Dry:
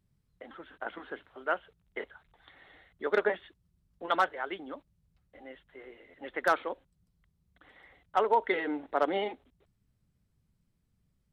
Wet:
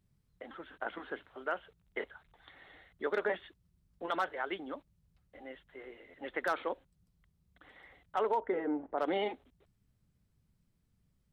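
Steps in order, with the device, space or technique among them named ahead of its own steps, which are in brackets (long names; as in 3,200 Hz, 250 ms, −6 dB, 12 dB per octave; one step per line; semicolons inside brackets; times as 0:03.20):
0:08.40–0:08.98: low-pass filter 1,000 Hz 12 dB per octave
clipper into limiter (hard clipping −16 dBFS, distortion −33 dB; brickwall limiter −23 dBFS, peak gain reduction 7 dB)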